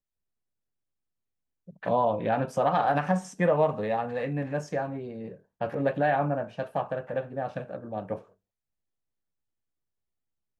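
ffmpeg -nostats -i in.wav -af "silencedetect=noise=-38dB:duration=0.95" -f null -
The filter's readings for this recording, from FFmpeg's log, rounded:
silence_start: 0.00
silence_end: 1.68 | silence_duration: 1.68
silence_start: 8.19
silence_end: 10.60 | silence_duration: 2.40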